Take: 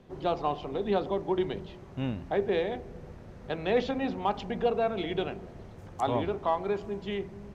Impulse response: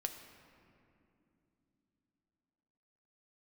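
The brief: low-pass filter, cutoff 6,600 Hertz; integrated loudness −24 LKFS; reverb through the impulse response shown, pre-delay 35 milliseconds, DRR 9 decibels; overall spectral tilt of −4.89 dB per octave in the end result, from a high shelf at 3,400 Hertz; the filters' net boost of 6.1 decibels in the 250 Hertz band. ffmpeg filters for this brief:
-filter_complex "[0:a]lowpass=6600,equalizer=frequency=250:width_type=o:gain=8,highshelf=frequency=3400:gain=-3.5,asplit=2[link_01][link_02];[1:a]atrim=start_sample=2205,adelay=35[link_03];[link_02][link_03]afir=irnorm=-1:irlink=0,volume=-8.5dB[link_04];[link_01][link_04]amix=inputs=2:normalize=0,volume=3.5dB"

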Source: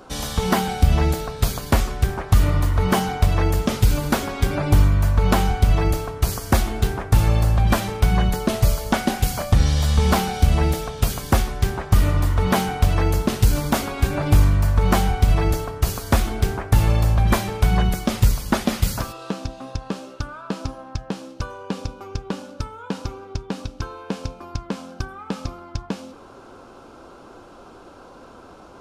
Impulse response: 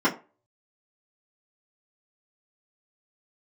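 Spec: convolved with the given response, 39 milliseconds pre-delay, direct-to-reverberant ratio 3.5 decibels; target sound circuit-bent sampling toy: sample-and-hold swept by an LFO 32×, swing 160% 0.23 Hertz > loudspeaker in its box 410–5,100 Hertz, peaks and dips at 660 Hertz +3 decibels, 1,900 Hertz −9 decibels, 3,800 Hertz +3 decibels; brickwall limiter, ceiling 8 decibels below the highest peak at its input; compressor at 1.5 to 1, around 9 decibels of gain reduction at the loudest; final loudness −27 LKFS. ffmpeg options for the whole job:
-filter_complex "[0:a]acompressor=threshold=-36dB:ratio=1.5,alimiter=limit=-19dB:level=0:latency=1,asplit=2[link_01][link_02];[1:a]atrim=start_sample=2205,adelay=39[link_03];[link_02][link_03]afir=irnorm=-1:irlink=0,volume=-19dB[link_04];[link_01][link_04]amix=inputs=2:normalize=0,acrusher=samples=32:mix=1:aa=0.000001:lfo=1:lforange=51.2:lforate=0.23,highpass=410,equalizer=frequency=660:width_type=q:width=4:gain=3,equalizer=frequency=1900:width_type=q:width=4:gain=-9,equalizer=frequency=3800:width_type=q:width=4:gain=3,lowpass=frequency=5100:width=0.5412,lowpass=frequency=5100:width=1.3066,volume=9.5dB"

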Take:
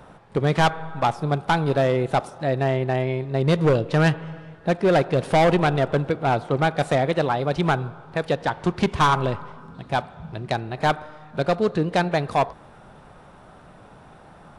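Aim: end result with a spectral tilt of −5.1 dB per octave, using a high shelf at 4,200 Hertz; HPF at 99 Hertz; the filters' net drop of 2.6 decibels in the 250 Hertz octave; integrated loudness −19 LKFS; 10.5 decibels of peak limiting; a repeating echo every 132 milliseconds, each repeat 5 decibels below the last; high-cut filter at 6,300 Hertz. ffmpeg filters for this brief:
ffmpeg -i in.wav -af "highpass=99,lowpass=6300,equalizer=frequency=250:width_type=o:gain=-4,highshelf=frequency=4200:gain=5.5,alimiter=limit=-17.5dB:level=0:latency=1,aecho=1:1:132|264|396|528|660|792|924:0.562|0.315|0.176|0.0988|0.0553|0.031|0.0173,volume=9dB" out.wav

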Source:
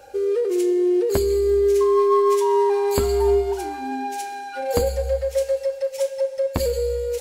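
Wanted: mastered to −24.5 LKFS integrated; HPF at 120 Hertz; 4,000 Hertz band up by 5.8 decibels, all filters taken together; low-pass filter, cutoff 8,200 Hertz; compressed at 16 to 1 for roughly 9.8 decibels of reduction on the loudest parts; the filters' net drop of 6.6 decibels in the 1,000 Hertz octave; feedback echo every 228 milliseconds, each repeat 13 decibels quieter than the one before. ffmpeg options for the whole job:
ffmpeg -i in.wav -af "highpass=120,lowpass=8200,equalizer=frequency=1000:width_type=o:gain=-8,equalizer=frequency=4000:width_type=o:gain=7.5,acompressor=threshold=-26dB:ratio=16,aecho=1:1:228|456|684:0.224|0.0493|0.0108,volume=5dB" out.wav

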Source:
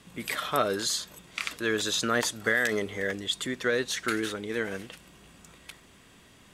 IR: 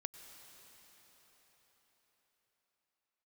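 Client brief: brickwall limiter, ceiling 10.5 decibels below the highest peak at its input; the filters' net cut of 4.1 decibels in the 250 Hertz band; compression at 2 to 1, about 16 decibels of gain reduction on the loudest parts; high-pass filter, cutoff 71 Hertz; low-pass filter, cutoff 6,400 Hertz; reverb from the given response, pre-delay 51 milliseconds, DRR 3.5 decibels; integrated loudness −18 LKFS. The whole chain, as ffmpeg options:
-filter_complex "[0:a]highpass=71,lowpass=6400,equalizer=frequency=250:width_type=o:gain=-5.5,acompressor=threshold=-52dB:ratio=2,alimiter=level_in=10.5dB:limit=-24dB:level=0:latency=1,volume=-10.5dB,asplit=2[link_01][link_02];[1:a]atrim=start_sample=2205,adelay=51[link_03];[link_02][link_03]afir=irnorm=-1:irlink=0,volume=-0.5dB[link_04];[link_01][link_04]amix=inputs=2:normalize=0,volume=27dB"

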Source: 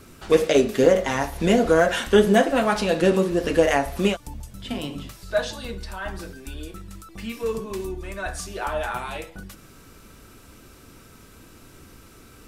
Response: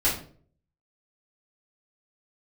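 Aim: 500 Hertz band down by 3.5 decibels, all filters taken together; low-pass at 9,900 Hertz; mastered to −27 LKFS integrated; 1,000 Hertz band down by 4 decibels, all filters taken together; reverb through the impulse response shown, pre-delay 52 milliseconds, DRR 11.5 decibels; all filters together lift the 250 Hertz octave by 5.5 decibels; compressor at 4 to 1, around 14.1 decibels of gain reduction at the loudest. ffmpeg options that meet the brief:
-filter_complex "[0:a]lowpass=9900,equalizer=frequency=250:width_type=o:gain=9,equalizer=frequency=500:width_type=o:gain=-6.5,equalizer=frequency=1000:width_type=o:gain=-3.5,acompressor=threshold=-28dB:ratio=4,asplit=2[link_01][link_02];[1:a]atrim=start_sample=2205,adelay=52[link_03];[link_02][link_03]afir=irnorm=-1:irlink=0,volume=-23.5dB[link_04];[link_01][link_04]amix=inputs=2:normalize=0,volume=5dB"

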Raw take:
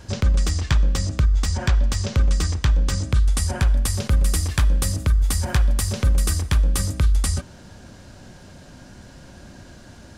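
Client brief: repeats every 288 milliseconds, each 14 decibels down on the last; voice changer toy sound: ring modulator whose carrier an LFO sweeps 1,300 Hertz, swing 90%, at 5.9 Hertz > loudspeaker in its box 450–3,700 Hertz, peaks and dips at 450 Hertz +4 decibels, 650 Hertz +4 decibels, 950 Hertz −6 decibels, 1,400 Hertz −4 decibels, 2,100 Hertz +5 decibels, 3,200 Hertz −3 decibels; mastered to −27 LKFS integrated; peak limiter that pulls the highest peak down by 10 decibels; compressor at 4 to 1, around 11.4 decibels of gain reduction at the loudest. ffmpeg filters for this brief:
ffmpeg -i in.wav -af "acompressor=threshold=-28dB:ratio=4,alimiter=limit=-23.5dB:level=0:latency=1,aecho=1:1:288|576:0.2|0.0399,aeval=exprs='val(0)*sin(2*PI*1300*n/s+1300*0.9/5.9*sin(2*PI*5.9*n/s))':channel_layout=same,highpass=450,equalizer=frequency=450:width_type=q:width=4:gain=4,equalizer=frequency=650:width_type=q:width=4:gain=4,equalizer=frequency=950:width_type=q:width=4:gain=-6,equalizer=frequency=1400:width_type=q:width=4:gain=-4,equalizer=frequency=2100:width_type=q:width=4:gain=5,equalizer=frequency=3200:width_type=q:width=4:gain=-3,lowpass=frequency=3700:width=0.5412,lowpass=frequency=3700:width=1.3066,volume=4dB" out.wav

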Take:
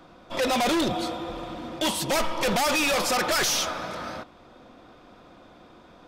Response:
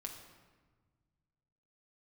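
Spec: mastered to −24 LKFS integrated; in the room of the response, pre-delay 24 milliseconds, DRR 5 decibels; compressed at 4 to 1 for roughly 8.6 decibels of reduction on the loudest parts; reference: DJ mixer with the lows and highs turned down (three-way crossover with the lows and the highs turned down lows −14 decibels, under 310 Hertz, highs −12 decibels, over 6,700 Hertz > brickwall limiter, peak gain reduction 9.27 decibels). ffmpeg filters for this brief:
-filter_complex "[0:a]acompressor=threshold=-33dB:ratio=4,asplit=2[link_01][link_02];[1:a]atrim=start_sample=2205,adelay=24[link_03];[link_02][link_03]afir=irnorm=-1:irlink=0,volume=-2.5dB[link_04];[link_01][link_04]amix=inputs=2:normalize=0,acrossover=split=310 6700:gain=0.2 1 0.251[link_05][link_06][link_07];[link_05][link_06][link_07]amix=inputs=3:normalize=0,volume=13dB,alimiter=limit=-15.5dB:level=0:latency=1"

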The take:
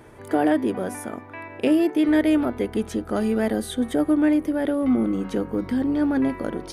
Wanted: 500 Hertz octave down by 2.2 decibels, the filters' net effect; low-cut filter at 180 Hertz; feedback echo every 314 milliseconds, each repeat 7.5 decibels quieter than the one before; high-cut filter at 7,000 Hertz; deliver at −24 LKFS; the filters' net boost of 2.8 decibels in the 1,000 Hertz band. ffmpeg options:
ffmpeg -i in.wav -af "highpass=180,lowpass=7000,equalizer=frequency=500:width_type=o:gain=-4.5,equalizer=frequency=1000:width_type=o:gain=6,aecho=1:1:314|628|942|1256|1570:0.422|0.177|0.0744|0.0312|0.0131,volume=-0.5dB" out.wav

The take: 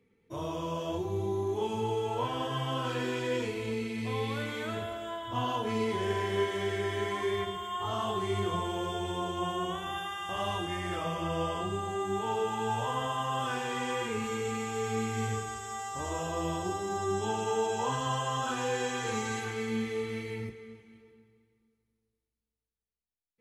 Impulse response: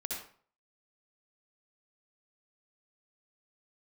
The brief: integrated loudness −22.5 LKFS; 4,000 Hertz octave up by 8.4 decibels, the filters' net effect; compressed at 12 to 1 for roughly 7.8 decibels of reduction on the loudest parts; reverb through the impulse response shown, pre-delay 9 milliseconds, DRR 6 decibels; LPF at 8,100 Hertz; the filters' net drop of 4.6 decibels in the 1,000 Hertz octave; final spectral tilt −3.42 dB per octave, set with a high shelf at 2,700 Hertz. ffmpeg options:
-filter_complex "[0:a]lowpass=8100,equalizer=frequency=1000:width_type=o:gain=-7,highshelf=frequency=2700:gain=7.5,equalizer=frequency=4000:width_type=o:gain=6,acompressor=threshold=-33dB:ratio=12,asplit=2[link_01][link_02];[1:a]atrim=start_sample=2205,adelay=9[link_03];[link_02][link_03]afir=irnorm=-1:irlink=0,volume=-7.5dB[link_04];[link_01][link_04]amix=inputs=2:normalize=0,volume=13dB"

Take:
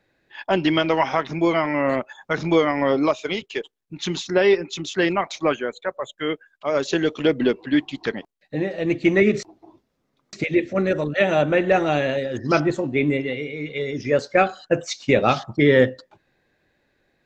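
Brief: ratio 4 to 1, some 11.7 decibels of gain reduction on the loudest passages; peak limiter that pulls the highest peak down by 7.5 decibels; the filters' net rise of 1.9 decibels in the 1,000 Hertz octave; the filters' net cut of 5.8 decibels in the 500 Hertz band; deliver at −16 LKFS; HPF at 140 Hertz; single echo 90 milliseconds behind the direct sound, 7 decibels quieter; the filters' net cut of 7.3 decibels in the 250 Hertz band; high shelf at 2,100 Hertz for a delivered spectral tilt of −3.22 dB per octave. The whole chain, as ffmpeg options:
ffmpeg -i in.wav -af "highpass=140,equalizer=frequency=250:width_type=o:gain=-7.5,equalizer=frequency=500:width_type=o:gain=-6.5,equalizer=frequency=1000:width_type=o:gain=3.5,highshelf=frequency=2100:gain=7,acompressor=threshold=-27dB:ratio=4,alimiter=limit=-19.5dB:level=0:latency=1,aecho=1:1:90:0.447,volume=15.5dB" out.wav

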